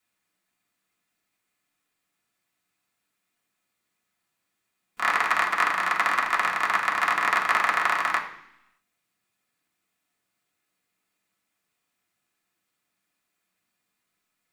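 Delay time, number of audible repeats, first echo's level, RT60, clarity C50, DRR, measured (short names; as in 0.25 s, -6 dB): none, none, none, 0.70 s, 9.0 dB, -3.0 dB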